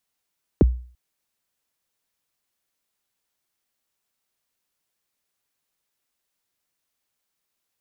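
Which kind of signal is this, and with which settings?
kick drum length 0.34 s, from 500 Hz, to 61 Hz, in 22 ms, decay 0.44 s, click off, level -8 dB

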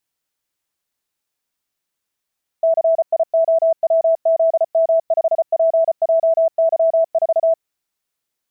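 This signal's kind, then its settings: Morse "CIOWZM5PJY4" 34 wpm 655 Hz -11 dBFS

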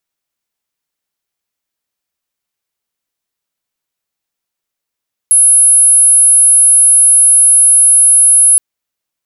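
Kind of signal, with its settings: tone sine 10600 Hz -3.5 dBFS 3.27 s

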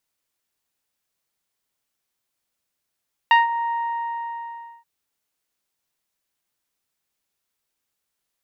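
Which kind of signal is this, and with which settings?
synth note saw A#5 24 dB/oct, low-pass 1500 Hz, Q 1, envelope 1 oct, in 0.16 s, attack 1.5 ms, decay 0.16 s, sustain -12 dB, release 1.13 s, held 0.40 s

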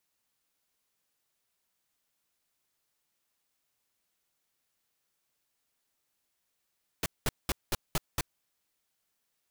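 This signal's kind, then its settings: noise bursts pink, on 0.03 s, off 0.20 s, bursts 6, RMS -28.5 dBFS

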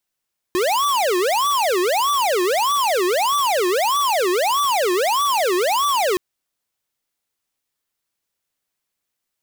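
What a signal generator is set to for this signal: siren wail 353–1160 Hz 1.6/s square -18.5 dBFS 5.62 s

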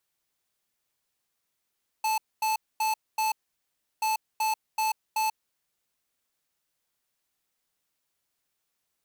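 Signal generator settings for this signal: beep pattern square 873 Hz, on 0.14 s, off 0.24 s, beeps 4, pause 0.70 s, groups 2, -26 dBFS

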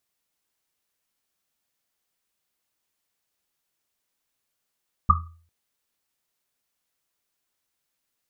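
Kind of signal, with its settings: Risset drum length 0.40 s, pitch 83 Hz, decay 0.50 s, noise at 1200 Hz, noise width 110 Hz, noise 60%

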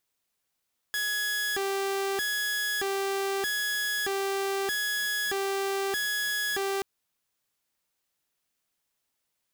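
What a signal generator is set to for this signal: siren hi-lo 392–1680 Hz 0.8/s saw -24.5 dBFS 5.88 s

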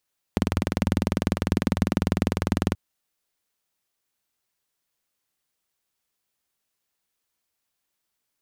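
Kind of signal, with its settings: single-cylinder engine model, steady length 2.38 s, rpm 2400, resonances 91/190 Hz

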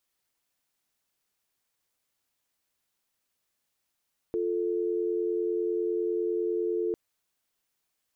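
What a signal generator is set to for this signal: call progress tone dial tone, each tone -28.5 dBFS 2.60 s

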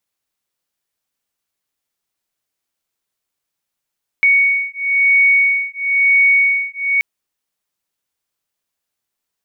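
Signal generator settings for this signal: beating tones 2230 Hz, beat 1 Hz, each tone -14 dBFS 2.78 s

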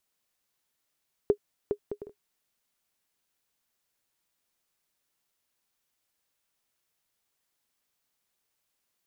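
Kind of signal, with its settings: bouncing ball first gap 0.41 s, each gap 0.5, 412 Hz, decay 78 ms -11.5 dBFS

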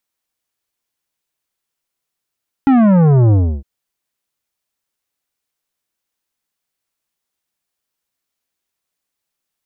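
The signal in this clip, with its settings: sub drop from 280 Hz, over 0.96 s, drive 12 dB, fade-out 0.31 s, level -8.5 dB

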